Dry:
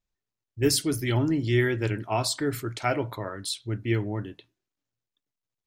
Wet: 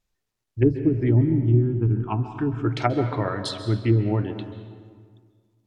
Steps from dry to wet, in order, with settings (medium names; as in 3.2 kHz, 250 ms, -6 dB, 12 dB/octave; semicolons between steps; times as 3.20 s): low-pass that closes with the level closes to 320 Hz, closed at -21.5 dBFS; 1.21–2.65 s: static phaser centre 2.9 kHz, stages 8; on a send: reverberation RT60 1.8 s, pre-delay 127 ms, DRR 8.5 dB; on the sum: trim +7.5 dB